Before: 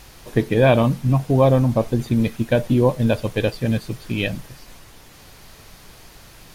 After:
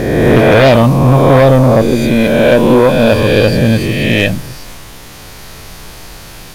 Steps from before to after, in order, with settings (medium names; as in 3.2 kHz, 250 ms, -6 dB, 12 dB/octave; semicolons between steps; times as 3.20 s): reverse spectral sustain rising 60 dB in 1.62 s; 1.82–3.12 s: peaking EQ 100 Hz -10.5 dB 1.2 oct; sine folder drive 7 dB, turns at -0.5 dBFS; trim -1 dB